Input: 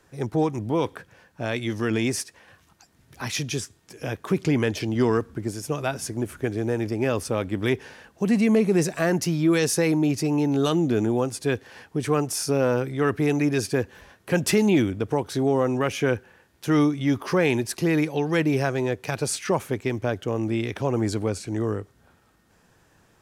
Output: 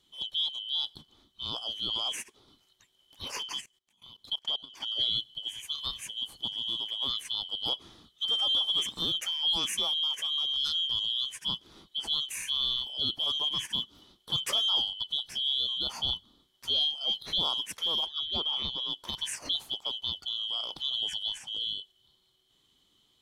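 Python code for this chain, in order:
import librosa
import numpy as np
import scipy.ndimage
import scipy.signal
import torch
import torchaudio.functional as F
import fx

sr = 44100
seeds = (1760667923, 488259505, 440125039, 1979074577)

y = fx.band_shuffle(x, sr, order='2413')
y = fx.level_steps(y, sr, step_db=21, at=(3.6, 4.8), fade=0.02)
y = fx.lowpass(y, sr, hz=4300.0, slope=12, at=(18.06, 18.9))
y = y * 10.0 ** (-8.5 / 20.0)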